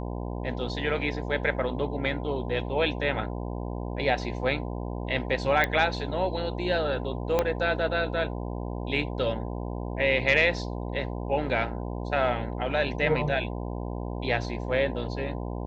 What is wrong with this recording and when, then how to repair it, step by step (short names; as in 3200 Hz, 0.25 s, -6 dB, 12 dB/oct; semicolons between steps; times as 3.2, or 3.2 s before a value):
buzz 60 Hz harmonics 17 -33 dBFS
5.64 pop -11 dBFS
7.39 pop -10 dBFS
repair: de-click; de-hum 60 Hz, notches 17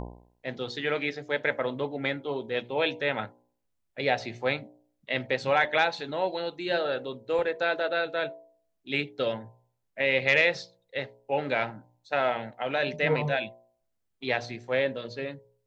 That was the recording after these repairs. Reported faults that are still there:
7.39 pop